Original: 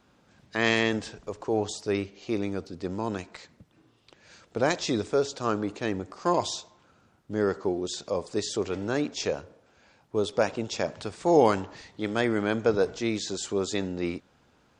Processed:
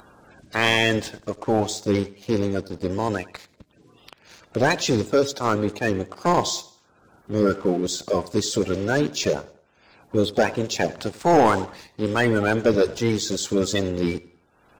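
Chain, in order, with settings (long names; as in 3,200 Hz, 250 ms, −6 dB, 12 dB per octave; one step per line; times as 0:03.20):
spectral magnitudes quantised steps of 30 dB
leveller curve on the samples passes 2
upward compression, threshold −37 dBFS
on a send: repeating echo 95 ms, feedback 35%, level −20.5 dB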